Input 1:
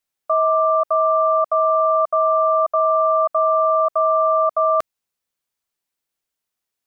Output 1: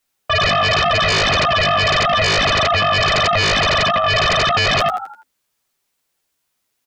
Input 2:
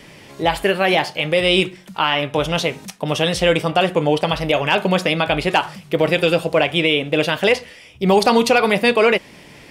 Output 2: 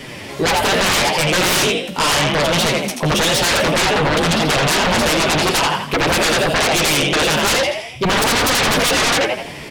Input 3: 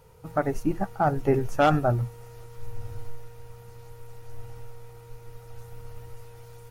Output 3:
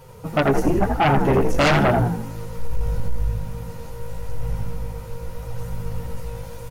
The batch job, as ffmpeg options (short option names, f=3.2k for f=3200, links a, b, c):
-filter_complex "[0:a]flanger=delay=7.6:depth=7.2:regen=4:speed=0.87:shape=sinusoidal,asplit=6[a][b][c][d][e][f];[b]adelay=83,afreqshift=51,volume=-6dB[g];[c]adelay=166,afreqshift=102,volume=-14.4dB[h];[d]adelay=249,afreqshift=153,volume=-22.8dB[i];[e]adelay=332,afreqshift=204,volume=-31.2dB[j];[f]adelay=415,afreqshift=255,volume=-39.6dB[k];[a][g][h][i][j][k]amix=inputs=6:normalize=0,aeval=exprs='0.596*sin(PI/2*7.08*val(0)/0.596)':c=same,volume=-8dB"